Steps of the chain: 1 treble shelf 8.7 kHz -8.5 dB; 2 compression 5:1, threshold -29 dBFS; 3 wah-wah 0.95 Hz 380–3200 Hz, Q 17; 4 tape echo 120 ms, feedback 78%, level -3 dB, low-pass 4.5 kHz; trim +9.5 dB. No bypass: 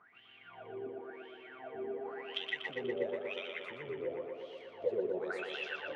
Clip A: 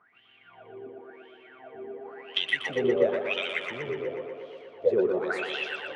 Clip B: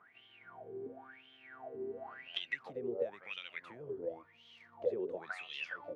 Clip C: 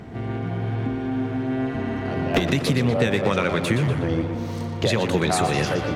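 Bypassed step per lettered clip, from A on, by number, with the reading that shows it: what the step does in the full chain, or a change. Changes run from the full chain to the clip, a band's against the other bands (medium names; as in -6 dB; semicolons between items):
2, crest factor change +1.5 dB; 4, echo-to-direct -25.5 dB to none; 3, 125 Hz band +22.5 dB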